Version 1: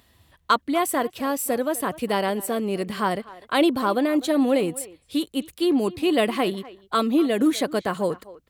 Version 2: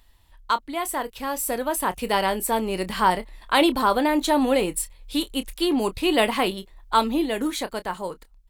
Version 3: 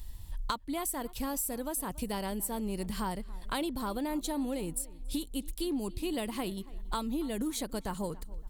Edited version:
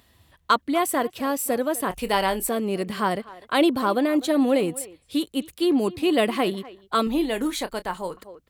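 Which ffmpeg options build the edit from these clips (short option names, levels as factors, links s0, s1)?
-filter_complex "[1:a]asplit=2[s0][s1];[0:a]asplit=3[s2][s3][s4];[s2]atrim=end=1.902[s5];[s0]atrim=start=1.898:end=2.492[s6];[s3]atrim=start=2.488:end=7.072[s7];[s1]atrim=start=7.068:end=8.172[s8];[s4]atrim=start=8.168[s9];[s5][s6]acrossfade=d=0.004:c1=hsin:c2=hsin[s10];[s10][s7]acrossfade=d=0.004:c1=hsin:c2=hsin[s11];[s11][s8]acrossfade=d=0.004:c1=hsin:c2=hsin[s12];[s12][s9]acrossfade=d=0.004:c1=hsin:c2=hsin"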